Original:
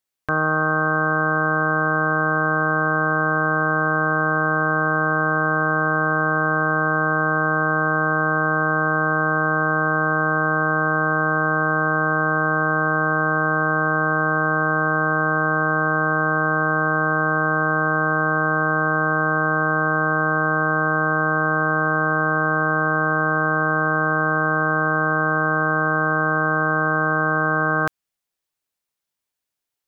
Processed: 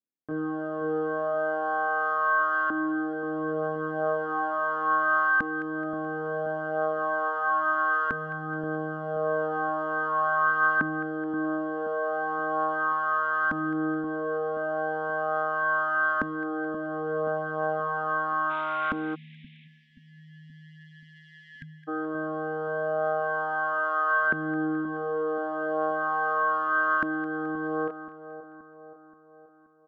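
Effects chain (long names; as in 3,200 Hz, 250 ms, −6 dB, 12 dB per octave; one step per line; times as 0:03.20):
0:18.49–0:19.64: compressing power law on the bin magnitudes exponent 0.19
downsampling to 8,000 Hz
in parallel at −5 dB: soft clipping −21 dBFS, distortion −7 dB
on the sum: multi-voice chorus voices 2, 0.13 Hz, delay 25 ms, depth 4.5 ms
auto-filter band-pass saw up 0.37 Hz 250–1,500 Hz
on a send: echo with a time of its own for lows and highs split 1,200 Hz, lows 527 ms, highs 214 ms, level −12 dB
0:19.15–0:21.88: on the sum: time-frequency box erased 260–1,600 Hz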